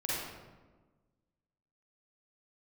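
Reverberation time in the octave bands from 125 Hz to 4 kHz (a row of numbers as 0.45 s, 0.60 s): 1.7 s, 1.7 s, 1.4 s, 1.2 s, 0.95 s, 0.75 s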